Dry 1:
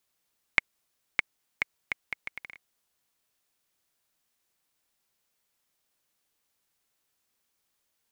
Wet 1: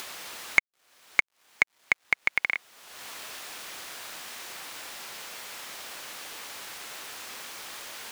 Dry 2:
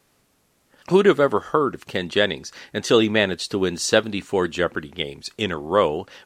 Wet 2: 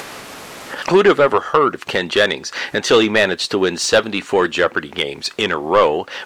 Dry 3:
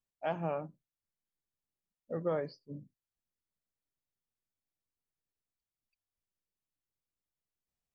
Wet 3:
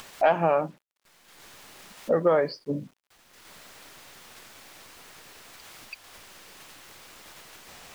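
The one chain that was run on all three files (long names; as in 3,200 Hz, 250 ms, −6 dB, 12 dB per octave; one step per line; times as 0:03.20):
upward compression, threshold −21 dBFS
bit reduction 11 bits
mid-hump overdrive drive 18 dB, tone 2,800 Hz, clips at −1 dBFS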